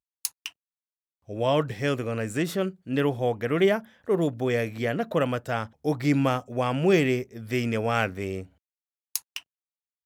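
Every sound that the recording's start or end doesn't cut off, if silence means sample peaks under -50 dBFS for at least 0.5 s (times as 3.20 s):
1.28–8.47 s
9.15–9.41 s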